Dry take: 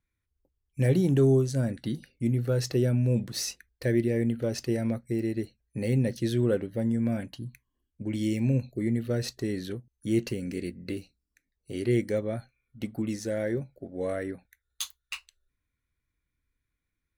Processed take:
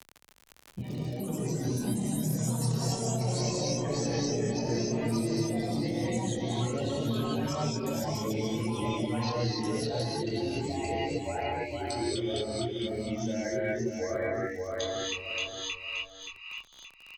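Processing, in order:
spectral dynamics exaggerated over time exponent 2
elliptic low-pass filter 6,300 Hz, stop band 40 dB
mains-hum notches 50/100/150/200/250/300/350 Hz
compressor whose output falls as the input rises −36 dBFS, ratio −0.5
reverb whose tail is shaped and stops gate 320 ms rising, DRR −5 dB
multi-voice chorus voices 6, 0.15 Hz, delay 25 ms, depth 1.9 ms
on a send: repeating echo 575 ms, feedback 22%, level −4 dB
on the sum: surface crackle 26 per second −51 dBFS
delay with pitch and tempo change per echo 154 ms, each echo +4 semitones, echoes 3
multiband upward and downward compressor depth 70%

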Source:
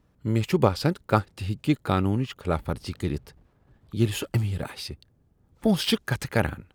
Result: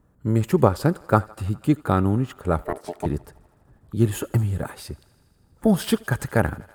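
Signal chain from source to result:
flat-topped bell 3,500 Hz −10 dB
0:02.62–0:03.06: ring modulation 520 Hz
feedback echo with a high-pass in the loop 81 ms, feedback 79%, high-pass 340 Hz, level −23.5 dB
level +3.5 dB

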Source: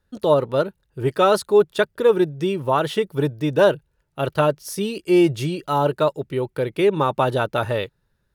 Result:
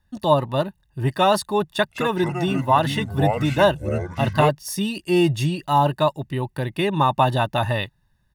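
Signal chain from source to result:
comb filter 1.1 ms, depth 77%
0:01.70–0:04.49: delay with pitch and tempo change per echo 187 ms, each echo −5 semitones, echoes 3, each echo −6 dB

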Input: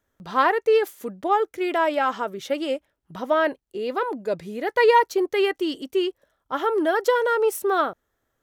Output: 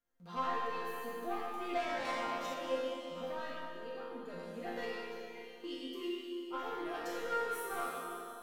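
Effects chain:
downward compressor 6 to 1, threshold −20 dBFS, peak gain reduction 8 dB
hard clipping −15.5 dBFS, distortion −30 dB
0:01.72–0:02.06: gain on a spectral selection 210–1,100 Hz +10 dB
0:03.64–0:04.16: output level in coarse steps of 17 dB
0:04.91–0:05.64: guitar amp tone stack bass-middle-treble 6-0-2
four-comb reverb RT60 2.7 s, combs from 29 ms, DRR −2 dB
soft clipping −19.5 dBFS, distortion −7 dB
notch filter 980 Hz, Q 25
resonators tuned to a chord F3 sus4, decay 0.77 s
0:02.05–0:02.54: high-shelf EQ 4,500 Hz +6 dB
level +8.5 dB

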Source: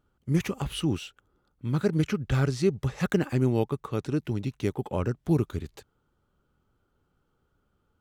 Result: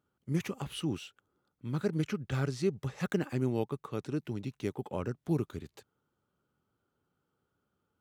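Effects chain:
high-pass filter 110 Hz 12 dB per octave
level −6 dB

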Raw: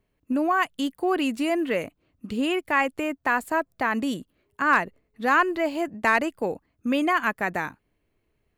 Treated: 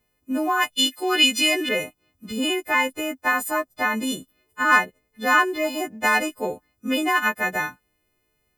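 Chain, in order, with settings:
every partial snapped to a pitch grid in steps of 3 semitones
0:00.75–0:01.69: meter weighting curve D

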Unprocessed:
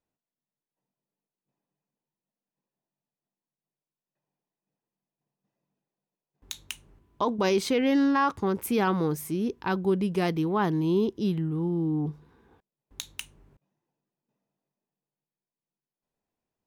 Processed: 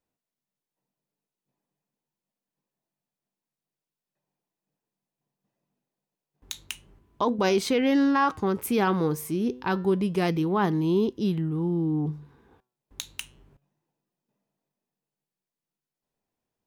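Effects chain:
flanger 0.27 Hz, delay 3.8 ms, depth 5 ms, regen +90%
level +6 dB

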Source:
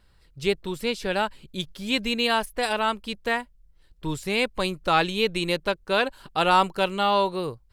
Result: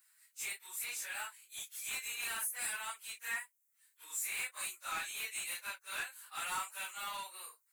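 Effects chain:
random phases in long frames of 100 ms
in parallel at 0 dB: downward compressor, threshold −34 dBFS, peak gain reduction 19.5 dB
on the sum: high-pass filter 1,300 Hz 12 dB per octave
first difference
soft clipping −32 dBFS, distortion −13 dB
flat-topped bell 3,900 Hz −12.5 dB 1.1 octaves
level +2.5 dB

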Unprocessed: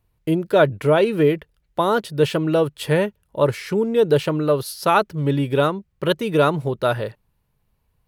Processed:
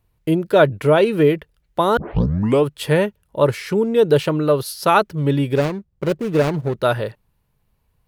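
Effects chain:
0:01.97: tape start 0.70 s
0:05.55–0:06.75: running median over 41 samples
level +2 dB

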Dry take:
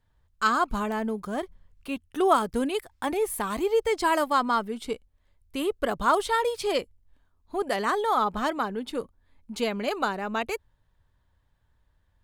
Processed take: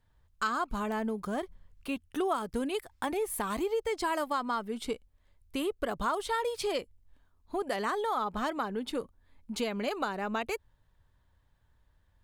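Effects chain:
downward compressor 3 to 1, threshold −30 dBFS, peak gain reduction 11 dB

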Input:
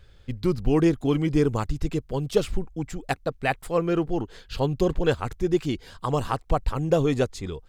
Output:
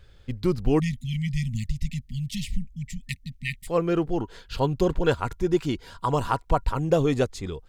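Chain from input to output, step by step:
0:00.80–0:03.67: time-frequency box erased 250–1,800 Hz
0:04.17–0:06.78: hollow resonant body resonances 970/1,400 Hz, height 9 dB → 12 dB, ringing for 65 ms

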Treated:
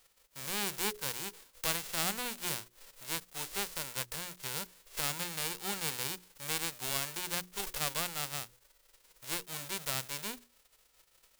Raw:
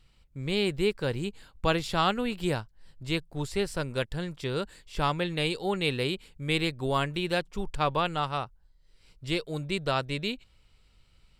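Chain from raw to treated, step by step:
spectral envelope flattened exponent 0.1
mains-hum notches 60/120/180/240/300/360/420 Hz
level −8 dB

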